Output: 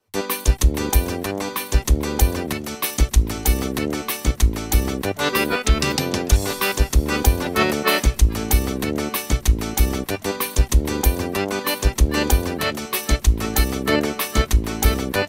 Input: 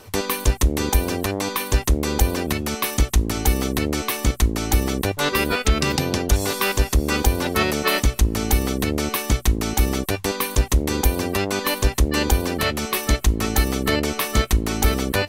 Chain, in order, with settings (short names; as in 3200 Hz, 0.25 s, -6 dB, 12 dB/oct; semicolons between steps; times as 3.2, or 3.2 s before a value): frequency-shifting echo 0.447 s, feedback 34%, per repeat -140 Hz, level -19 dB; three-band expander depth 100%